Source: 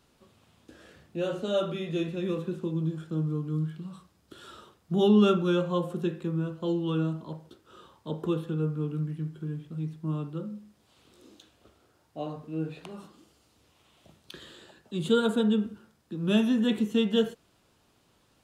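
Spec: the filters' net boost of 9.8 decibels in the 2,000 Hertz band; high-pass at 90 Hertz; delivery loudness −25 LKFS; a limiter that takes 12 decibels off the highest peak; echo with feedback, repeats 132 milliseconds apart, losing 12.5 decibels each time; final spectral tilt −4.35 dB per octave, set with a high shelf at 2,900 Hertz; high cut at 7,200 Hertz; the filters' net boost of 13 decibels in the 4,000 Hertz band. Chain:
high-pass filter 90 Hz
low-pass filter 7,200 Hz
parametric band 2,000 Hz +7.5 dB
high-shelf EQ 2,900 Hz +8.5 dB
parametric band 4,000 Hz +7.5 dB
brickwall limiter −19 dBFS
repeating echo 132 ms, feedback 24%, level −12.5 dB
level +5.5 dB

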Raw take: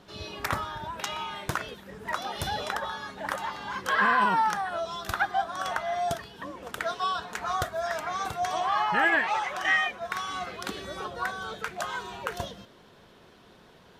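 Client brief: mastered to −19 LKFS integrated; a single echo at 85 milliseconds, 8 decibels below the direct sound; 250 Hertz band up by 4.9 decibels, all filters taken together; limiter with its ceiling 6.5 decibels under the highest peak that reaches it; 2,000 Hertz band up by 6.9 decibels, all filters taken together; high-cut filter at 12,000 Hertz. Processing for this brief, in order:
low-pass filter 12,000 Hz
parametric band 250 Hz +6.5 dB
parametric band 2,000 Hz +8.5 dB
brickwall limiter −13 dBFS
single-tap delay 85 ms −8 dB
level +7 dB

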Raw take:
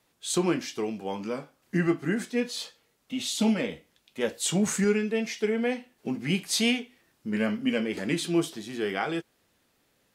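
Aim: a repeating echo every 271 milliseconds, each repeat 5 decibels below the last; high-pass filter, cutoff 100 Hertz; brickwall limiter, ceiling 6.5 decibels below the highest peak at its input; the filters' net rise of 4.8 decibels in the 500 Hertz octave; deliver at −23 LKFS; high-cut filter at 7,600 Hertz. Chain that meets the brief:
high-pass filter 100 Hz
low-pass filter 7,600 Hz
parametric band 500 Hz +6 dB
brickwall limiter −17.5 dBFS
repeating echo 271 ms, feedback 56%, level −5 dB
level +4.5 dB

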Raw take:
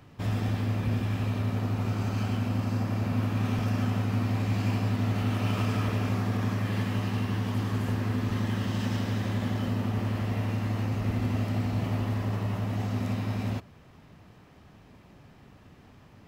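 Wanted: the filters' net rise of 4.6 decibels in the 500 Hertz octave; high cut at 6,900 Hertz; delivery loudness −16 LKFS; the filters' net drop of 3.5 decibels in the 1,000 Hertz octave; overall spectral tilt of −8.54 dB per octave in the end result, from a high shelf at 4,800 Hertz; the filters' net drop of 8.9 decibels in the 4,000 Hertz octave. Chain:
low-pass filter 6,900 Hz
parametric band 500 Hz +8 dB
parametric band 1,000 Hz −7.5 dB
parametric band 4,000 Hz −9 dB
high-shelf EQ 4,800 Hz −6.5 dB
level +13 dB

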